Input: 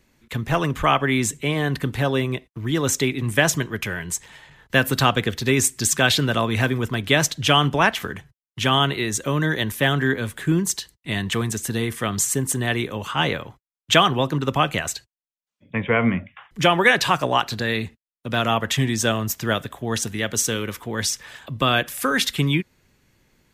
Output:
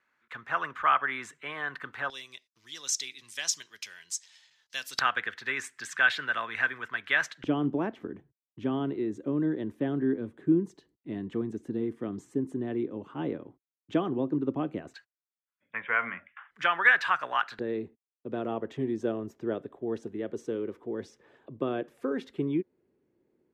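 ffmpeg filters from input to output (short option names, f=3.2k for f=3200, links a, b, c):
-af "asetnsamples=n=441:p=0,asendcmd='2.1 bandpass f 5200;4.99 bandpass f 1600;7.44 bandpass f 310;14.94 bandpass f 1500;17.59 bandpass f 370',bandpass=f=1.4k:t=q:w=2.9:csg=0"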